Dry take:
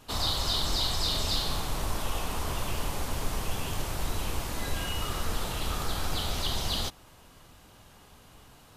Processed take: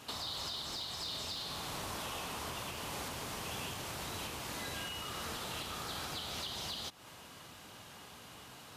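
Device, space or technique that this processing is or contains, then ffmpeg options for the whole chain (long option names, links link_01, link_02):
broadcast voice chain: -af "highpass=110,deesser=0.65,acompressor=threshold=-41dB:ratio=4,equalizer=frequency=3100:width_type=o:width=3:gain=4.5,alimiter=level_in=7.5dB:limit=-24dB:level=0:latency=1:release=317,volume=-7.5dB,volume=1dB"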